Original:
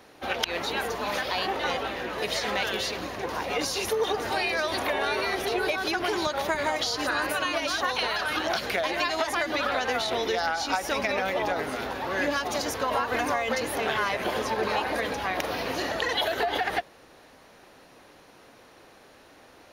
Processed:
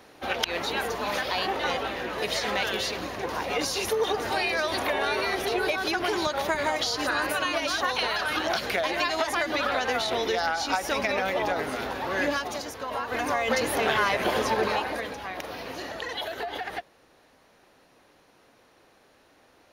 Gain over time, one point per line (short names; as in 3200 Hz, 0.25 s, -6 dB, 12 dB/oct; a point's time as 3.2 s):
12.31 s +0.5 dB
12.74 s -8 dB
13.55 s +3 dB
14.56 s +3 dB
15.18 s -6.5 dB